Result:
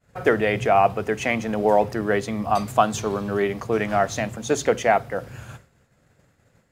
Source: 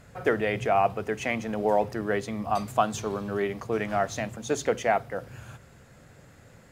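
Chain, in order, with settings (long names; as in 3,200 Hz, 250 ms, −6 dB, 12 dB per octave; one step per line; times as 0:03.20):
downward expander −42 dBFS
level +5.5 dB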